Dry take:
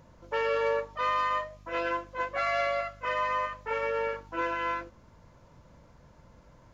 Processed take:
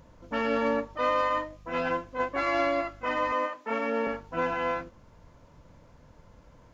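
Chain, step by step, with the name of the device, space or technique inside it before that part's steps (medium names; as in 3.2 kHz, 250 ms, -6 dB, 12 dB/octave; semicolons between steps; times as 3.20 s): 3.32–4.07 s: high-pass 330 Hz 24 dB/octave; octave pedal (harmony voices -12 st -4 dB)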